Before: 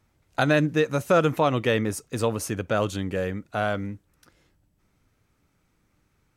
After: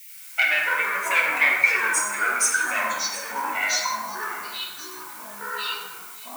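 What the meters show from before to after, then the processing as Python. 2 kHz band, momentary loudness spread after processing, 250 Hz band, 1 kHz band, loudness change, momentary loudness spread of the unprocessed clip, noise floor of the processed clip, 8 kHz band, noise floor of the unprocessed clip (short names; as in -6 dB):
+11.5 dB, 17 LU, -17.0 dB, +3.5 dB, +2.5 dB, 9 LU, -42 dBFS, +14.0 dB, -70 dBFS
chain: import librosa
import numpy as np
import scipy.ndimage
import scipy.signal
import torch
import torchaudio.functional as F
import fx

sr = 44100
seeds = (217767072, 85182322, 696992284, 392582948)

y = fx.spec_expand(x, sr, power=2.4)
y = fx.peak_eq(y, sr, hz=7400.0, db=7.0, octaves=0.75)
y = fx.leveller(y, sr, passes=2)
y = fx.dmg_noise_colour(y, sr, seeds[0], colour='violet', level_db=-46.0)
y = fx.highpass_res(y, sr, hz=2200.0, q=9.7)
y = y + 10.0 ** (-17.0 / 20.0) * np.pad(y, (int(722 * sr / 1000.0), 0))[:len(y)]
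y = fx.echo_pitch(y, sr, ms=89, semitones=-7, count=2, db_per_echo=-6.0)
y = fx.rev_plate(y, sr, seeds[1], rt60_s=1.4, hf_ratio=0.5, predelay_ms=0, drr_db=-2.5)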